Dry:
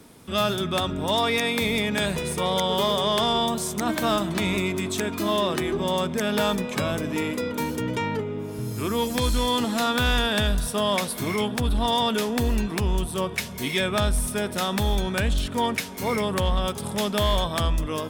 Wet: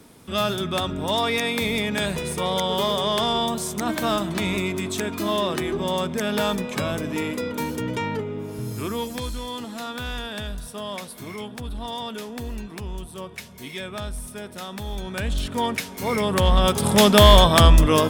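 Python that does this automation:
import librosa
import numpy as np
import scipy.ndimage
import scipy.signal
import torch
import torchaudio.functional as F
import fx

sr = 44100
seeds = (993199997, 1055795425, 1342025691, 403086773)

y = fx.gain(x, sr, db=fx.line((8.74, 0.0), (9.42, -9.0), (14.84, -9.0), (15.44, 0.0), (16.02, 0.0), (16.97, 11.0)))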